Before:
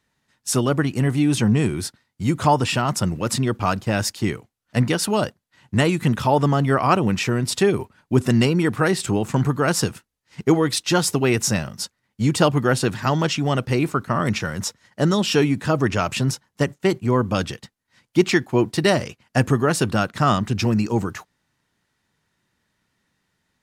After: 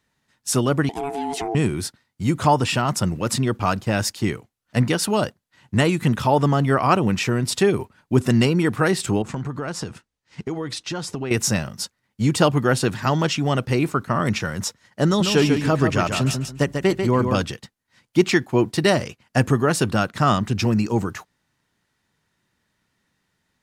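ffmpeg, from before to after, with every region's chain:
ffmpeg -i in.wav -filter_complex "[0:a]asettb=1/sr,asplit=3[link_01][link_02][link_03];[link_01]atrim=end=0.894[link_04];[link_02]atrim=start=0.89:end=1.55,asetpts=PTS-STARTPTS,afade=type=in:duration=0.004:curve=qsin,afade=type=out:start_time=0.656:duration=0.004:curve=qsin,acompressor=threshold=-21dB:ratio=4:attack=3.2:release=140:knee=1:detection=peak,aeval=exprs='val(0)*sin(2*PI*560*n/s)':channel_layout=same[link_05];[link_03]atrim=start=1.546[link_06];[link_04][link_05]acrossfade=duration=0.004:curve1=hsin:curve2=qsin[link_07];[link_07][link_06]acrossfade=duration=0.004:curve1=qsin:curve2=hsin,asettb=1/sr,asplit=3[link_08][link_09][link_10];[link_08]atrim=end=9.224[link_11];[link_09]atrim=start=9.22:end=11.31,asetpts=PTS-STARTPTS,afade=type=in:duration=0.004:curve=qsin,afade=type=out:start_time=2.086:duration=0.004:curve=qsin,lowpass=7700,acompressor=threshold=-24dB:ratio=6:attack=3.2:release=140:knee=1:detection=peak,adynamicequalizer=threshold=0.00794:dfrequency=1900:dqfactor=0.7:tfrequency=1900:tqfactor=0.7:attack=5:release=100:ratio=0.375:range=2:mode=cutabove:tftype=highshelf[link_12];[link_10]atrim=start=11.306[link_13];[link_11][link_12]acrossfade=duration=0.004:curve1=hsin:curve2=qsin[link_14];[link_14][link_13]acrossfade=duration=0.004:curve1=qsin:curve2=hsin,asettb=1/sr,asplit=3[link_15][link_16][link_17];[link_15]atrim=end=15.064[link_18];[link_16]atrim=start=15.06:end=17.42,asetpts=PTS-STARTPTS,afade=type=in:duration=0.004:curve=qsin,afade=type=out:start_time=2.356:duration=0.004:curve=qsin,aeval=exprs='val(0)+0.00251*(sin(2*PI*50*n/s)+sin(2*PI*2*50*n/s)/2+sin(2*PI*3*50*n/s)/3+sin(2*PI*4*50*n/s)/4+sin(2*PI*5*50*n/s)/5)':channel_layout=same,aecho=1:1:143|286|429:0.501|0.135|0.0365,atrim=end_sample=104076[link_19];[link_17]atrim=start=17.416[link_20];[link_18][link_19]acrossfade=duration=0.004:curve1=hsin:curve2=qsin[link_21];[link_21][link_20]acrossfade=duration=0.004:curve1=qsin:curve2=hsin" out.wav

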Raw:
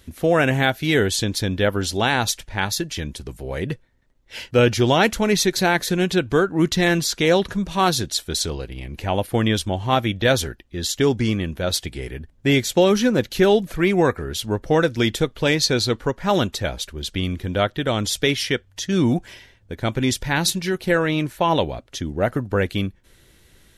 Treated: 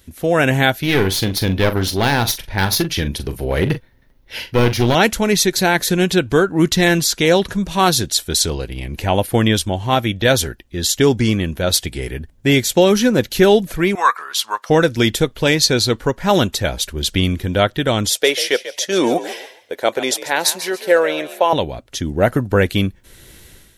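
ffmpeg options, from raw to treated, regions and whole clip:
ffmpeg -i in.wav -filter_complex "[0:a]asettb=1/sr,asplit=3[link_01][link_02][link_03];[link_01]atrim=end=0.804[link_04];[link_02]atrim=start=0.8:end=4.95,asetpts=PTS-STARTPTS,afade=type=in:duration=0.004:curve=qsin,afade=type=out:start_time=4.146:duration=0.004:curve=qsin,aeval=exprs='clip(val(0),-1,0.0794)':channel_layout=same,equalizer=frequency=7600:width=2.7:gain=-13.5,asplit=2[link_05][link_06];[link_06]adelay=42,volume=-11dB[link_07];[link_05][link_07]amix=inputs=2:normalize=0,atrim=end_sample=183015[link_08];[link_03]atrim=start=4.946[link_09];[link_04][link_08]acrossfade=duration=0.004:curve1=hsin:curve2=qsin[link_10];[link_10][link_09]acrossfade=duration=0.004:curve1=qsin:curve2=hsin,asettb=1/sr,asplit=3[link_11][link_12][link_13];[link_11]atrim=end=13.954[link_14];[link_12]atrim=start=13.95:end=14.7,asetpts=PTS-STARTPTS,afade=type=in:duration=0.004:curve=qsin,afade=type=out:start_time=0.746:duration=0.004:curve=qsin,highpass=frequency=1100:width_type=q:width=6.3,equalizer=frequency=4400:width=1:gain=5.5[link_15];[link_13]atrim=start=14.696[link_16];[link_14][link_15]acrossfade=duration=0.004:curve1=hsin:curve2=qsin[link_17];[link_17][link_16]acrossfade=duration=0.004:curve1=qsin:curve2=hsin,asettb=1/sr,asplit=3[link_18][link_19][link_20];[link_18]atrim=end=18.104[link_21];[link_19]atrim=start=18.1:end=21.53,asetpts=PTS-STARTPTS,afade=type=in:duration=0.004:curve=qsin,afade=type=out:start_time=3.426:duration=0.004:curve=qsin,highpass=frequency=510:width_type=q:width=2.1,asplit=4[link_22][link_23][link_24][link_25];[link_23]adelay=141,afreqshift=54,volume=-13.5dB[link_26];[link_24]adelay=282,afreqshift=108,volume=-22.9dB[link_27];[link_25]adelay=423,afreqshift=162,volume=-32.2dB[link_28];[link_22][link_26][link_27][link_28]amix=inputs=4:normalize=0,atrim=end_sample=151263[link_29];[link_20]atrim=start=21.526[link_30];[link_21][link_29]acrossfade=duration=0.004:curve1=hsin:curve2=qsin[link_31];[link_31][link_30]acrossfade=duration=0.004:curve1=qsin:curve2=hsin,highshelf=frequency=8200:gain=7.5,bandreject=frequency=1200:width=23,dynaudnorm=framelen=140:gausssize=5:maxgain=11.5dB,volume=-1dB" out.wav

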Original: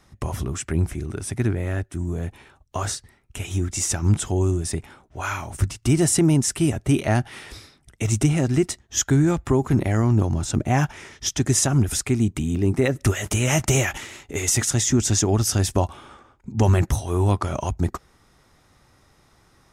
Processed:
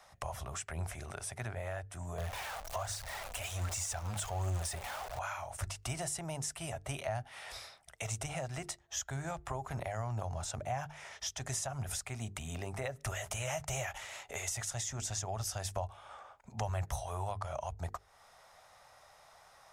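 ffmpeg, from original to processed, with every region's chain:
ffmpeg -i in.wav -filter_complex "[0:a]asettb=1/sr,asplit=3[link_01][link_02][link_03];[link_01]atrim=end=2.184[link_04];[link_02]atrim=start=2.18:end=5.19,asetpts=PTS-STARTPTS,afade=type=in:duration=0.004:curve=qsin,afade=type=out:start_time=3.006:duration=0.004:curve=qsin,aeval=exprs='val(0)+0.5*0.0376*sgn(val(0))':channel_layout=same,aphaser=in_gain=1:out_gain=1:delay=4.3:decay=0.37:speed=1.3:type=triangular[link_05];[link_03]atrim=start=5.186[link_06];[link_04][link_05]acrossfade=duration=0.004:curve1=hsin:curve2=qsin[link_07];[link_07][link_06]acrossfade=duration=0.004:curve1=qsin:curve2=hsin,lowshelf=frequency=450:width_type=q:width=3:gain=-12.5,bandreject=frequency=50:width_type=h:width=6,bandreject=frequency=100:width_type=h:width=6,bandreject=frequency=150:width_type=h:width=6,bandreject=frequency=200:width_type=h:width=6,bandreject=frequency=250:width_type=h:width=6,bandreject=frequency=300:width_type=h:width=6,bandreject=frequency=350:width_type=h:width=6,bandreject=frequency=400:width_type=h:width=6,bandreject=frequency=450:width_type=h:width=6,acrossover=split=130[link_08][link_09];[link_09]acompressor=threshold=-40dB:ratio=3[link_10];[link_08][link_10]amix=inputs=2:normalize=0,volume=-1.5dB" out.wav

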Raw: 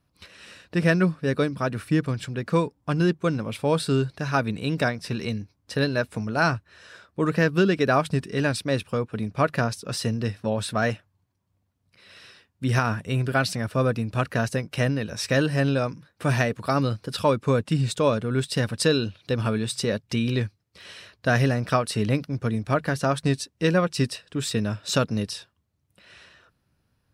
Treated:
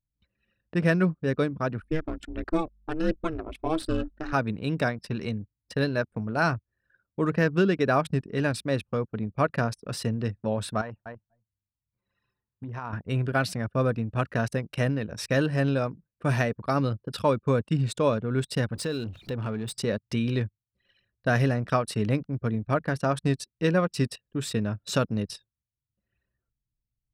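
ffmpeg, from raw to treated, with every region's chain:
ffmpeg -i in.wav -filter_complex "[0:a]asettb=1/sr,asplit=3[link_01][link_02][link_03];[link_01]atrim=end=1.824[link_04];[link_02]atrim=start=1.82:end=4.33,asetpts=PTS-STARTPTS,afade=type=in:duration=0.004:curve=qsin,afade=type=out:start_time=2.506:duration=0.004:curve=qsin,aphaser=in_gain=1:out_gain=1:delay=2.6:decay=0.46:speed=1.5:type=triangular,aeval=exprs='val(0)*sin(2*PI*160*n/s)':channel_layout=same,aeval=exprs='val(0)+0.00251*(sin(2*PI*50*n/s)+sin(2*PI*2*50*n/s)/2+sin(2*PI*3*50*n/s)/3+sin(2*PI*4*50*n/s)/4+sin(2*PI*5*50*n/s)/5)':channel_layout=same[link_05];[link_03]atrim=start=4.326[link_06];[link_04][link_05]acrossfade=duration=0.004:curve1=hsin:curve2=qsin[link_07];[link_07][link_06]acrossfade=duration=0.004:curve1=qsin:curve2=hsin,asettb=1/sr,asplit=3[link_08][link_09][link_10];[link_08]atrim=end=10.814[link_11];[link_09]atrim=start=10.81:end=12.93,asetpts=PTS-STARTPTS,afade=type=in:duration=0.004:curve=qsin,afade=type=out:start_time=2.116:duration=0.004:curve=qsin,aecho=1:1:246|492:0.178|0.0409,atrim=end_sample=93492,acompressor=threshold=-31dB:ratio=10:attack=3.2:release=140:knee=1:detection=peak,equalizer=frequency=960:width=2.5:gain=11[link_12];[link_10]atrim=start=12.926[link_13];[link_11][link_12]acrossfade=duration=0.004:curve1=hsin:curve2=qsin[link_14];[link_14][link_13]acrossfade=duration=0.004:curve1=qsin:curve2=hsin,asettb=1/sr,asplit=3[link_15][link_16][link_17];[link_15]atrim=end=18.754[link_18];[link_16]atrim=start=18.75:end=19.72,asetpts=PTS-STARTPTS,afade=type=in:duration=0.004:curve=qsin,afade=type=out:start_time=0.966:duration=0.004:curve=qsin,aeval=exprs='val(0)+0.5*0.02*sgn(val(0))':channel_layout=same,acompressor=threshold=-29dB:ratio=2:attack=3.2:release=140:knee=1:detection=peak[link_19];[link_17]atrim=start=19.716[link_20];[link_18][link_19]acrossfade=duration=0.004:curve1=hsin:curve2=qsin[link_21];[link_21][link_20]acrossfade=duration=0.004:curve1=qsin:curve2=hsin,anlmdn=3.98,equalizer=frequency=5200:width_type=o:width=2.2:gain=-4,volume=-2dB" out.wav

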